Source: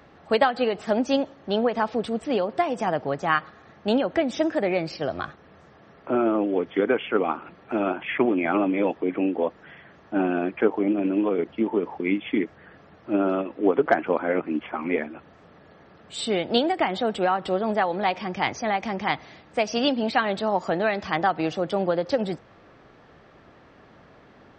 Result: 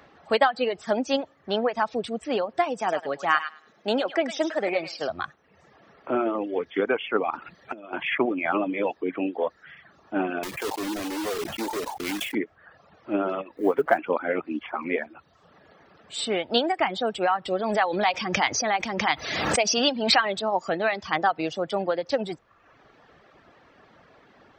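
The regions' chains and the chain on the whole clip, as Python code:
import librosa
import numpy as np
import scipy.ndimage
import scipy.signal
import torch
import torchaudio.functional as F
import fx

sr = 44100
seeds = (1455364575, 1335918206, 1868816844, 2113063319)

y = fx.chain(x, sr, fx.highpass(hz=210.0, slope=12),
    fx.echo_thinned(ms=103, feedback_pct=31, hz=900.0, wet_db=-4), at=(2.78, 5.1))
y = fx.chain(y, sr, fx.over_compress(threshold_db=-30.0, ratio=-0.5),
    fx.peak_eq(hz=6300.0, db=4.0, octaves=0.98), at=(7.3, 8.15))
y = fx.chain(y, sr, fx.block_float(bits=3),
    fx.clip_hard(threshold_db=-24.0),
    fx.sustainer(db_per_s=64.0), at=(10.43, 12.35))
y = fx.chain(y, sr, fx.law_mismatch(coded='mu'),
    fx.peak_eq(hz=5000.0, db=-8.0, octaves=1.9), at=(13.57, 13.98))
y = fx.chain(y, sr, fx.high_shelf(hz=4100.0, db=6.0),
    fx.pre_swell(db_per_s=33.0), at=(17.59, 20.42))
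y = fx.dereverb_blind(y, sr, rt60_s=0.82)
y = fx.low_shelf(y, sr, hz=390.0, db=-7.0)
y = F.gain(torch.from_numpy(y), 1.5).numpy()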